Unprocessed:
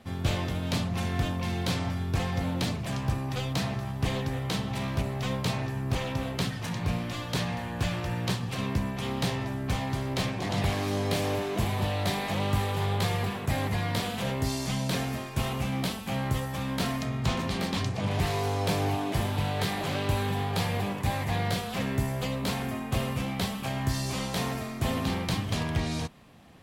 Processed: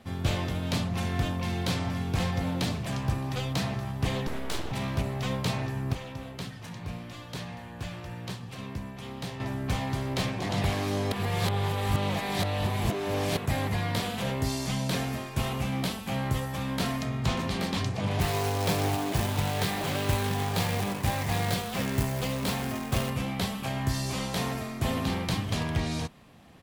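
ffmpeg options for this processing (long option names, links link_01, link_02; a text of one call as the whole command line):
ffmpeg -i in.wav -filter_complex "[0:a]asplit=2[link_01][link_02];[link_02]afade=type=in:start_time=1.37:duration=0.01,afade=type=out:start_time=1.79:duration=0.01,aecho=0:1:520|1040|1560|2080|2600:0.398107|0.159243|0.0636971|0.0254789|0.0101915[link_03];[link_01][link_03]amix=inputs=2:normalize=0,asettb=1/sr,asplit=3[link_04][link_05][link_06];[link_04]atrim=end=4.274[link_07];[link_05]atrim=start=4.27:end=4.72,asetpts=PTS-STARTPTS,afade=type=in:duration=0.004:curve=qsin,afade=type=out:start_time=0.446:duration=0.004:curve=qsin,aeval=exprs='abs(val(0))':channel_layout=same[link_08];[link_06]atrim=start=4.716[link_09];[link_07][link_08]acrossfade=duration=0.004:curve1=hsin:curve2=qsin[link_10];[link_10][link_09]acrossfade=duration=0.004:curve1=qsin:curve2=hsin,asettb=1/sr,asplit=3[link_11][link_12][link_13];[link_11]atrim=end=18.214[link_14];[link_12]atrim=start=18.21:end=23.1,asetpts=PTS-STARTPTS,afade=type=in:duration=0.004:curve=qsin,afade=type=out:start_time=4.886:duration=0.004:curve=qsin,acrusher=bits=2:mode=log:mix=0:aa=0.000001[link_15];[link_13]atrim=start=23.096[link_16];[link_14][link_15]acrossfade=duration=0.004:curve1=hsin:curve2=qsin[link_17];[link_17][link_16]acrossfade=duration=0.004:curve1=qsin:curve2=hsin,asplit=5[link_18][link_19][link_20][link_21][link_22];[link_18]atrim=end=5.932[link_23];[link_19]atrim=start=5.928:end=9.402,asetpts=PTS-STARTPTS,volume=-8dB[link_24];[link_20]atrim=start=9.398:end=11.122[link_25];[link_21]atrim=start=11.118:end=13.372,asetpts=PTS-STARTPTS,areverse[link_26];[link_22]atrim=start=13.368[link_27];[link_23][link_24]acrossfade=duration=0.004:curve1=hsin:curve2=hsin[link_28];[link_28][link_25]acrossfade=duration=0.004:curve1=hsin:curve2=hsin[link_29];[link_29][link_26]acrossfade=duration=0.004:curve1=hsin:curve2=hsin[link_30];[link_30][link_27]acrossfade=duration=0.004:curve1=hsin:curve2=hsin" out.wav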